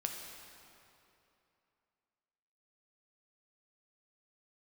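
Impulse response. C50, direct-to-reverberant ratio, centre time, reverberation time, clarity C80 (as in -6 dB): 3.0 dB, 1.5 dB, 83 ms, 2.9 s, 4.0 dB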